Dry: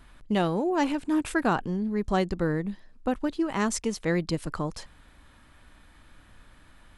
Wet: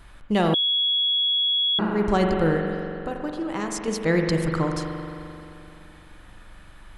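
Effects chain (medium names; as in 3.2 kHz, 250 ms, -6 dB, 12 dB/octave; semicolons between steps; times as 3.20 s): peaking EQ 250 Hz -10 dB 0.22 oct; 2.57–3.88 s: compression 3:1, threshold -34 dBFS, peak gain reduction 9 dB; spring tank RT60 2.8 s, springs 43 ms, chirp 65 ms, DRR 2.5 dB; 0.54–1.79 s: bleep 3.35 kHz -23.5 dBFS; loudness maximiser +13.5 dB; trim -9 dB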